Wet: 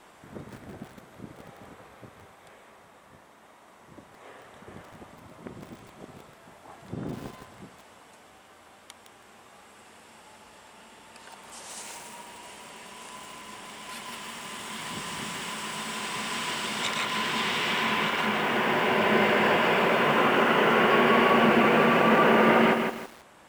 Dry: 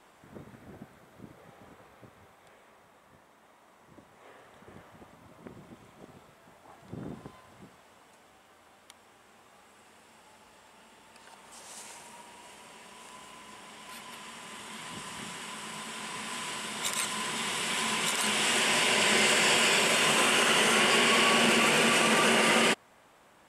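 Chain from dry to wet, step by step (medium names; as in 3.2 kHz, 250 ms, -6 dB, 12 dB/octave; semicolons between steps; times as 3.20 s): low-pass that closes with the level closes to 1.5 kHz, closed at -24.5 dBFS; bit-crushed delay 162 ms, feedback 35%, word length 8-bit, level -5 dB; trim +5.5 dB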